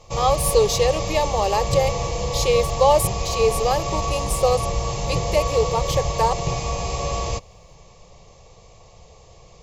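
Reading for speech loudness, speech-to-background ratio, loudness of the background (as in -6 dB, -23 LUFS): -22.0 LUFS, 3.5 dB, -25.5 LUFS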